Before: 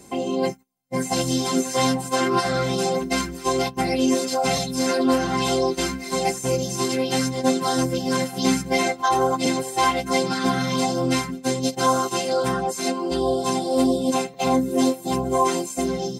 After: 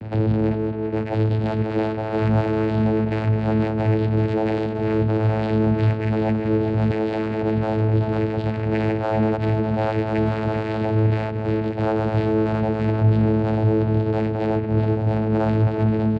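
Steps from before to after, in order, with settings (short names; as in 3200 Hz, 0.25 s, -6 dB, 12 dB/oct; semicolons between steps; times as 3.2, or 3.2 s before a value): 6.9–7.42 minimum comb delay 1.4 ms; on a send: narrowing echo 0.201 s, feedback 57%, band-pass 700 Hz, level -16 dB; on the sum: mistuned SSB -200 Hz 250–3400 Hz; in parallel at -4 dB: fuzz box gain 45 dB, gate -53 dBFS; on the sum: air absorption 180 m; vocoder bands 8, saw 109 Hz; bell 1100 Hz -4.5 dB 0.51 oct; speakerphone echo 0.39 s, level -7 dB; gain -3.5 dB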